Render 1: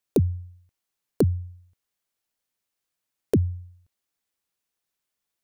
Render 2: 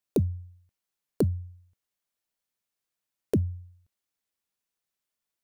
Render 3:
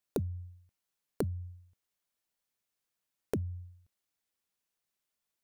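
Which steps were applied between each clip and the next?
tuned comb filter 200 Hz, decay 0.2 s, harmonics odd, mix 40%
downward compressor 5 to 1, threshold −31 dBFS, peak gain reduction 10.5 dB

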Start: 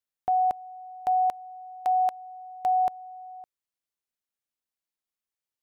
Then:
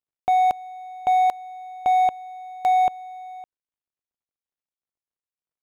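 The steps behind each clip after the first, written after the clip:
running median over 25 samples
level +6 dB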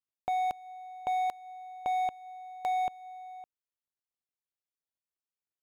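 dynamic equaliser 710 Hz, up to −4 dB, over −29 dBFS, Q 0.78
level −7.5 dB

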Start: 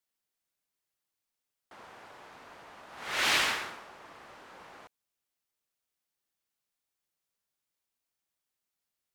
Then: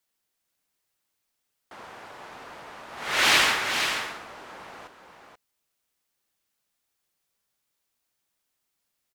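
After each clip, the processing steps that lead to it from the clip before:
single-tap delay 483 ms −7 dB
level +7 dB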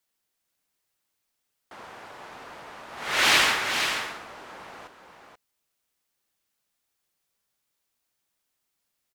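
no processing that can be heard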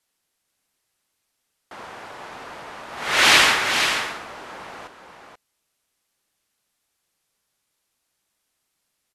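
linear-phase brick-wall low-pass 13,000 Hz
level +5.5 dB

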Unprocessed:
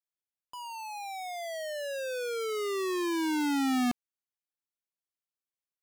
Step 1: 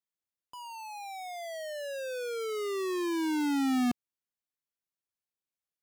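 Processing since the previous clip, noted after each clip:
parametric band 150 Hz +4.5 dB 2.7 octaves
level −3 dB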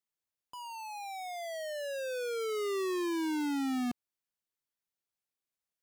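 brickwall limiter −30.5 dBFS, peak gain reduction 6 dB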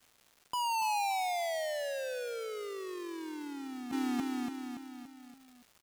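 repeating echo 285 ms, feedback 52%, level −10 dB
compressor whose output falls as the input rises −42 dBFS, ratio −1
surface crackle 450 per second −55 dBFS
level +5.5 dB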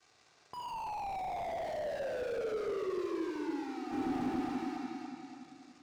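loudspeaker in its box 120–6,700 Hz, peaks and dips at 250 Hz −9 dB, 1,800 Hz −3 dB, 3,100 Hz −7 dB
rectangular room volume 4,000 cubic metres, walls mixed, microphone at 3.6 metres
slew-rate limiting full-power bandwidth 11 Hz

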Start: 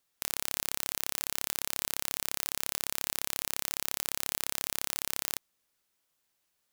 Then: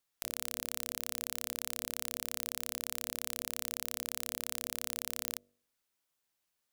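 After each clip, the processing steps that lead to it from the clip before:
hum removal 48.26 Hz, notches 14
level −5 dB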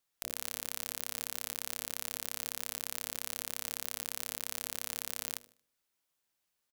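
repeating echo 76 ms, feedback 39%, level −20 dB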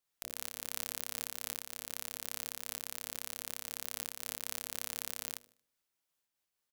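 amplitude modulation by smooth noise, depth 65%
level +1 dB

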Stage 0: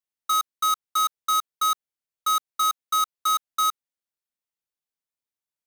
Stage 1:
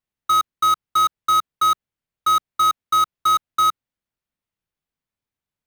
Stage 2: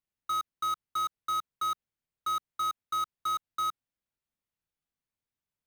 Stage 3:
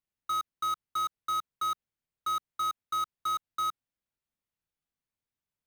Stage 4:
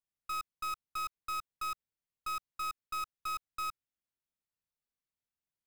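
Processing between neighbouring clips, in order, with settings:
bass and treble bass +11 dB, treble −9 dB; level +6 dB
brickwall limiter −20.5 dBFS, peak gain reduction 8 dB; level −5.5 dB
no processing that can be heard
stylus tracing distortion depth 0.1 ms; level −6.5 dB

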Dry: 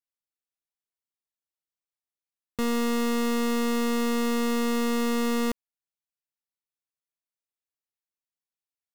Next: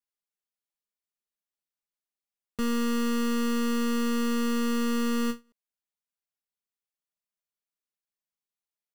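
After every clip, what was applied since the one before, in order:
comb filter 4.9 ms, depth 92%
every ending faded ahead of time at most 300 dB per second
level −5 dB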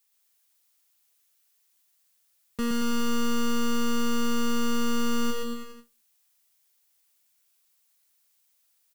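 background noise blue −71 dBFS
bouncing-ball delay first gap 120 ms, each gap 0.9×, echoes 5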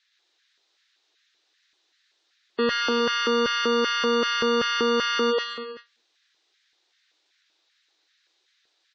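loudspeaker in its box 250–5,400 Hz, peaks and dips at 320 Hz +10 dB, 730 Hz +4 dB, 1,700 Hz +3 dB, 3,800 Hz +8 dB
auto-filter high-pass square 2.6 Hz 370–1,700 Hz
gate on every frequency bin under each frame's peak −25 dB strong
level +6.5 dB

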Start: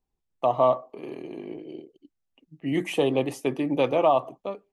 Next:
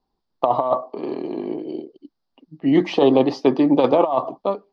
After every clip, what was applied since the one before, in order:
drawn EQ curve 120 Hz 0 dB, 230 Hz +9 dB, 500 Hz +7 dB, 980 Hz +12 dB, 2,500 Hz −2 dB, 4,800 Hz +13 dB, 8,600 Hz −27 dB
compressor whose output falls as the input rises −14 dBFS, ratio −0.5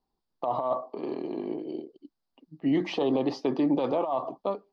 brickwall limiter −11.5 dBFS, peak gain reduction 10 dB
level −6 dB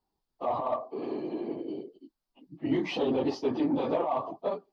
random phases in long frames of 50 ms
in parallel at −4 dB: soft clipping −25 dBFS, distortion −11 dB
on the sum: level −4.5 dB

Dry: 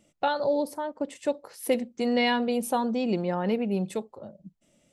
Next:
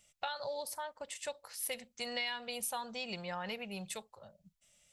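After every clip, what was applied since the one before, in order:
guitar amp tone stack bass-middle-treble 10-0-10
downward compressor 6 to 1, threshold −38 dBFS, peak gain reduction 10.5 dB
level +3.5 dB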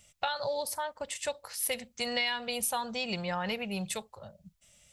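parametric band 71 Hz +7.5 dB 2.1 octaves
level +6.5 dB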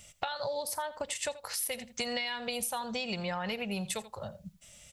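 single-tap delay 83 ms −18.5 dB
downward compressor, threshold −39 dBFS, peak gain reduction 12 dB
level +7 dB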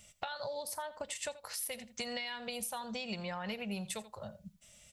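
tuned comb filter 210 Hz, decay 0.15 s, harmonics odd, mix 50%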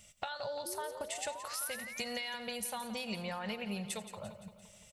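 sound drawn into the spectrogram rise, 0:00.65–0:02.04, 330–2,600 Hz −47 dBFS
on a send: repeating echo 172 ms, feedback 57%, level −12.5 dB

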